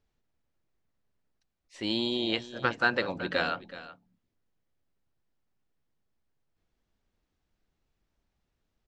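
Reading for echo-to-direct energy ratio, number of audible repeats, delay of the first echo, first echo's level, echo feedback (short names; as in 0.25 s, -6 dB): -15.5 dB, 1, 0.375 s, -15.5 dB, no steady repeat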